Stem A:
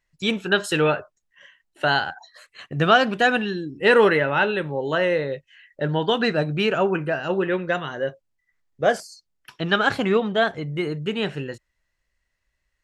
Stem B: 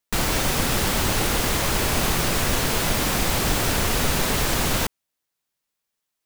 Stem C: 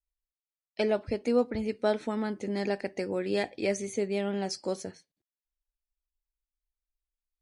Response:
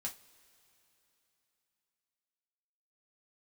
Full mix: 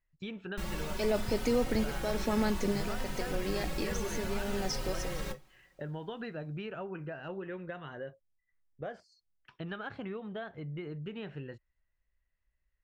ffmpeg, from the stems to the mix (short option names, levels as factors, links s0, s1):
-filter_complex "[0:a]acompressor=threshold=0.0501:ratio=2.5,lowpass=2900,volume=0.266,asplit=2[s0][s1];[1:a]highshelf=f=4300:g=-6.5,aecho=1:1:5.4:0.51,asplit=2[s2][s3];[s3]adelay=3.2,afreqshift=0.62[s4];[s2][s4]amix=inputs=2:normalize=1,adelay=450,volume=0.211,asplit=2[s5][s6];[s6]volume=0.501[s7];[2:a]equalizer=f=5400:t=o:w=0.42:g=11.5,alimiter=limit=0.0708:level=0:latency=1,adelay=200,volume=1.33[s8];[s1]apad=whole_len=335959[s9];[s8][s9]sidechaincompress=threshold=0.00794:ratio=8:attack=5.3:release=232[s10];[s0][s5]amix=inputs=2:normalize=0,lowshelf=f=110:g=10,acompressor=threshold=0.0126:ratio=2,volume=1[s11];[3:a]atrim=start_sample=2205[s12];[s7][s12]afir=irnorm=-1:irlink=0[s13];[s10][s11][s13]amix=inputs=3:normalize=0"